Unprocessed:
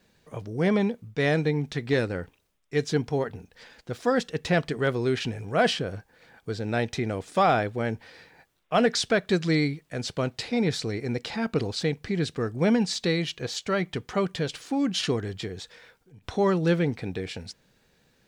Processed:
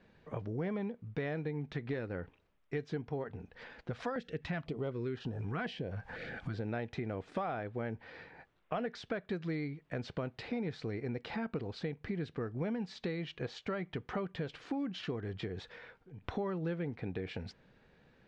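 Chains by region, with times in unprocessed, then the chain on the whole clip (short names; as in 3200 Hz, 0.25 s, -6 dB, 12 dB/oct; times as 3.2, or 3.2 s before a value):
3.91–6.54 upward compressor, threshold -27 dBFS + stepped notch 4 Hz 340–2200 Hz
whole clip: compressor 6:1, threshold -36 dBFS; LPF 2400 Hz 12 dB/oct; gain +1 dB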